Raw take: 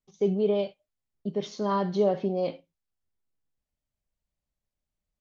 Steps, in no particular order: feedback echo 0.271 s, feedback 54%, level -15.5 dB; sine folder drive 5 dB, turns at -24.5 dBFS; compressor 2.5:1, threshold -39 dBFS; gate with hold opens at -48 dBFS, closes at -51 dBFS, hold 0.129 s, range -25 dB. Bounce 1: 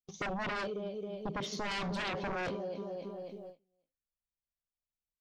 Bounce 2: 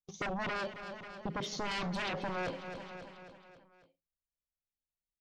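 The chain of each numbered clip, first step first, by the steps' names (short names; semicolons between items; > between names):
feedback echo > gate with hold > sine folder > compressor; gate with hold > sine folder > feedback echo > compressor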